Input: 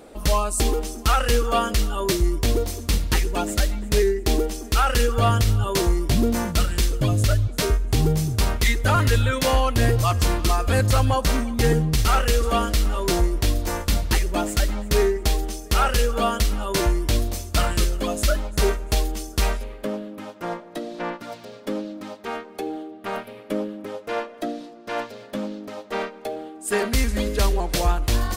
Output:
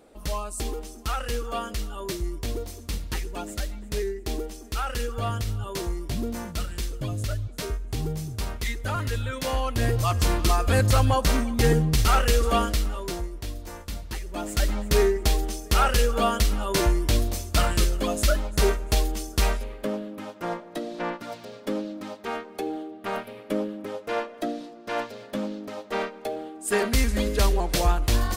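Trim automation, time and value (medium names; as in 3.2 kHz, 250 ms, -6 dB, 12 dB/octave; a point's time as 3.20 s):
9.23 s -9.5 dB
10.40 s -1 dB
12.60 s -1 dB
13.29 s -13 dB
14.22 s -13 dB
14.67 s -1 dB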